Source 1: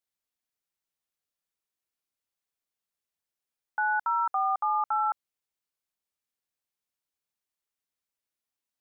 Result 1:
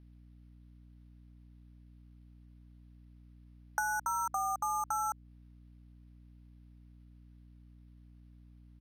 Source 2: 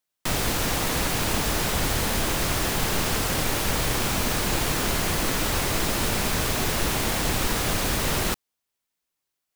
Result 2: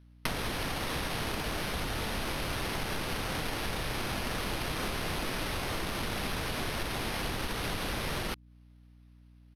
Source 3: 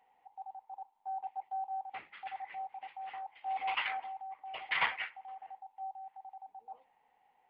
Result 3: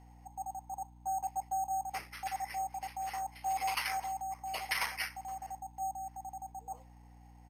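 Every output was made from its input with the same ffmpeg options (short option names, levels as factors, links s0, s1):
-af "acompressor=threshold=0.0178:ratio=16,acrusher=samples=6:mix=1:aa=0.000001,aresample=32000,aresample=44100,aeval=exprs='val(0)+0.001*(sin(2*PI*60*n/s)+sin(2*PI*2*60*n/s)/2+sin(2*PI*3*60*n/s)/3+sin(2*PI*4*60*n/s)/4+sin(2*PI*5*60*n/s)/5)':c=same,volume=1.78"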